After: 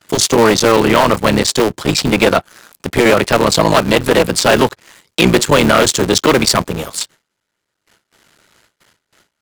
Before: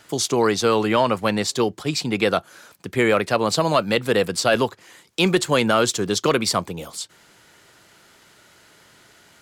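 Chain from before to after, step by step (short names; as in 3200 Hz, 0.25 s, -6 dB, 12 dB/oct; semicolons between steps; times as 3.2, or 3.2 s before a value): cycle switcher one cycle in 3, muted; notch 750 Hz, Q 18; gate with hold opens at -42 dBFS; sample leveller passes 2; gain +4.5 dB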